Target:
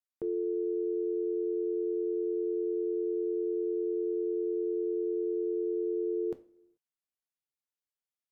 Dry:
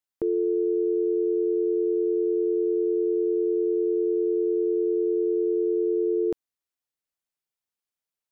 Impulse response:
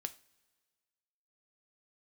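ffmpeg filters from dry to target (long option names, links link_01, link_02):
-filter_complex "[1:a]atrim=start_sample=2205,afade=type=out:start_time=0.43:duration=0.01,atrim=end_sample=19404,asetrate=37926,aresample=44100[link_01];[0:a][link_01]afir=irnorm=-1:irlink=0,volume=-7.5dB"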